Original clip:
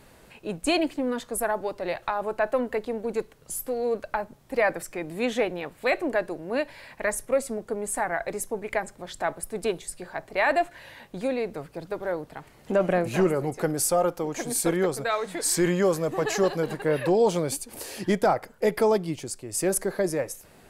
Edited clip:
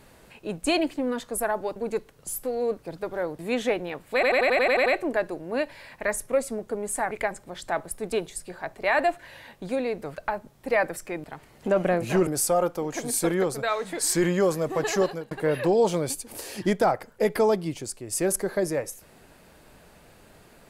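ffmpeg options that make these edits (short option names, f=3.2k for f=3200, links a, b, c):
-filter_complex "[0:a]asplit=17[a][b][c][d][e][f][g][h][i][j][k][l][m][n][o][p][q];[a]atrim=end=1.762[r];[b]atrim=start=2.988:end=4.022[s];[c]atrim=start=11.678:end=12.282[t];[d]atrim=start=5.098:end=5.942[u];[e]atrim=start=5.848:end=5.942[v];[f]atrim=start=5.848:end=5.942[w];[g]atrim=start=5.848:end=5.942[x];[h]atrim=start=5.848:end=5.942[y];[i]atrim=start=5.848:end=5.942[z];[j]atrim=start=5.848:end=5.942[aa];[k]atrim=start=5.848:end=5.942[ab];[l]atrim=start=5.848:end=8.102[ac];[m]atrim=start=8.628:end=11.682[ad];[n]atrim=start=4.018:end=5.102[ae];[o]atrim=start=12.278:end=13.312[af];[p]atrim=start=13.688:end=16.73,asetpts=PTS-STARTPTS,afade=t=out:st=2.752:d=0.29[ag];[q]atrim=start=16.73,asetpts=PTS-STARTPTS,afade=t=in:d=0.004:c=hsin[ah];[r][s]acrossfade=d=0.004:c1=hsin:c2=hsin[ai];[ai][t]acrossfade=d=0.004:c1=hsin:c2=hsin[aj];[aj][u]acrossfade=d=0.004:c1=hsin:c2=hsin[ak];[ak][v]acrossfade=d=0.004:c1=hsin:c2=hsin[al];[al][w]acrossfade=d=0.004:c1=hsin:c2=hsin[am];[am][x]acrossfade=d=0.004:c1=hsin:c2=hsin[an];[an][y]acrossfade=d=0.004:c1=hsin:c2=hsin[ao];[ao][z]acrossfade=d=0.004:c1=hsin:c2=hsin[ap];[ap][aa]acrossfade=d=0.004:c1=hsin:c2=hsin[aq];[aq][ab]acrossfade=d=0.004:c1=hsin:c2=hsin[ar];[ar][ac]acrossfade=d=0.004:c1=hsin:c2=hsin[as];[as][ad]acrossfade=d=0.004:c1=hsin:c2=hsin[at];[at][ae]acrossfade=d=0.004:c1=hsin:c2=hsin[au];[au][af]acrossfade=d=0.004:c1=hsin:c2=hsin[av];[ag][ah]concat=n=2:v=0:a=1[aw];[av][aw]acrossfade=d=0.004:c1=hsin:c2=hsin"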